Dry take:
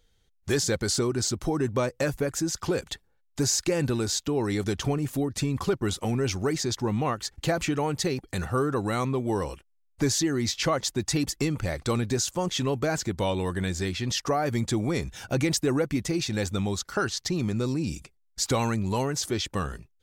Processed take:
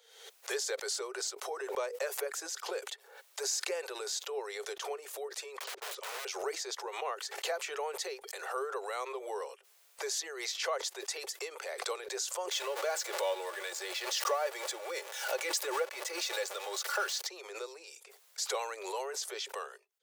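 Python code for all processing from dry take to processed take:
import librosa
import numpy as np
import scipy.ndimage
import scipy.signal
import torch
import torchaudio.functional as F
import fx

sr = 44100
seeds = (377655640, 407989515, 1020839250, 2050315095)

y = fx.chain(x, sr, fx.lowpass(hz=5600.0, slope=12),
    fx.low_shelf(hz=86.0, db=8.5),
    fx.overflow_wrap(gain_db=27.5), at=(5.57, 6.25))
y = fx.chain(y, sr, fx.zero_step(step_db=-31.5),
    fx.comb(ms=3.5, depth=0.54), at=(12.51, 17.27))
y = scipy.signal.sosfilt(scipy.signal.butter(16, 400.0, 'highpass', fs=sr, output='sos'), y)
y = fx.pre_swell(y, sr, db_per_s=63.0)
y = y * librosa.db_to_amplitude(-8.0)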